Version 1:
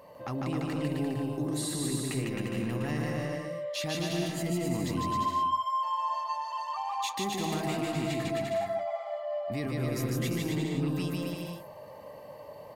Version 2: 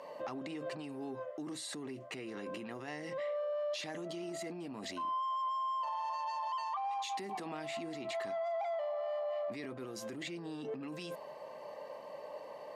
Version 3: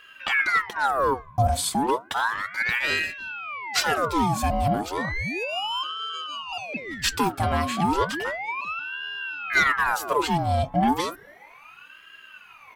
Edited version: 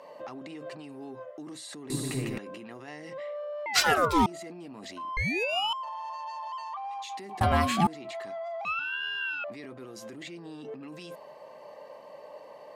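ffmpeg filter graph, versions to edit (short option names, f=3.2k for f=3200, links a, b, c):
-filter_complex "[2:a]asplit=4[a][b][c][d];[1:a]asplit=6[e][f][g][h][i][j];[e]atrim=end=1.902[k];[0:a]atrim=start=1.898:end=2.382[l];[f]atrim=start=2.378:end=3.662[m];[a]atrim=start=3.658:end=4.262[n];[g]atrim=start=4.258:end=5.172[o];[b]atrim=start=5.168:end=5.732[p];[h]atrim=start=5.728:end=7.412[q];[c]atrim=start=7.408:end=7.872[r];[i]atrim=start=7.868:end=8.652[s];[d]atrim=start=8.648:end=9.442[t];[j]atrim=start=9.438[u];[k][l]acrossfade=d=0.004:c1=hsin:c2=hsin[v];[v][m]acrossfade=d=0.004:c1=hsin:c2=hsin[w];[w][n]acrossfade=d=0.004:c1=hsin:c2=hsin[x];[x][o]acrossfade=d=0.004:c1=hsin:c2=hsin[y];[y][p]acrossfade=d=0.004:c1=hsin:c2=hsin[z];[z][q]acrossfade=d=0.004:c1=hsin:c2=hsin[aa];[aa][r]acrossfade=d=0.004:c1=hsin:c2=hsin[ab];[ab][s]acrossfade=d=0.004:c1=hsin:c2=hsin[ac];[ac][t]acrossfade=d=0.004:c1=hsin:c2=hsin[ad];[ad][u]acrossfade=d=0.004:c1=hsin:c2=hsin"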